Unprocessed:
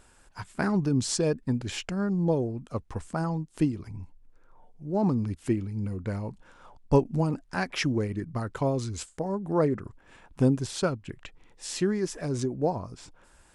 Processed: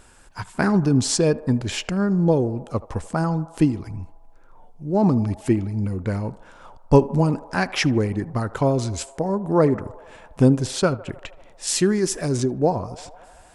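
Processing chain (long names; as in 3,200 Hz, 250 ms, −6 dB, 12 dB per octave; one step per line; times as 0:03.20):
0:11.67–0:12.37: high-shelf EQ 6,600 Hz +11.5 dB
feedback echo with a band-pass in the loop 77 ms, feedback 82%, band-pass 780 Hz, level −17 dB
level +7 dB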